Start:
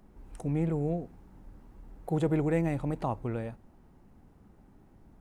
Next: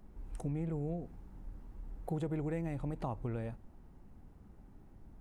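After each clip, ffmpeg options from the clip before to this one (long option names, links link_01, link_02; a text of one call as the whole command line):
ffmpeg -i in.wav -af "lowshelf=frequency=98:gain=8,acompressor=threshold=-31dB:ratio=4,volume=-3dB" out.wav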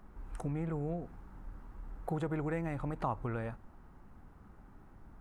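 ffmpeg -i in.wav -af "equalizer=frequency=1300:width_type=o:width=1.3:gain=11.5" out.wav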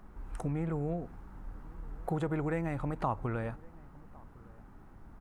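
ffmpeg -i in.wav -filter_complex "[0:a]asplit=2[link_01][link_02];[link_02]adelay=1108,volume=-24dB,highshelf=frequency=4000:gain=-24.9[link_03];[link_01][link_03]amix=inputs=2:normalize=0,volume=2.5dB" out.wav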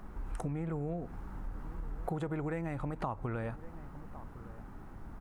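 ffmpeg -i in.wav -af "acompressor=threshold=-41dB:ratio=3,volume=5.5dB" out.wav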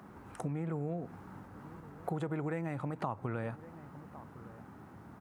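ffmpeg -i in.wav -af "highpass=frequency=96:width=0.5412,highpass=frequency=96:width=1.3066" out.wav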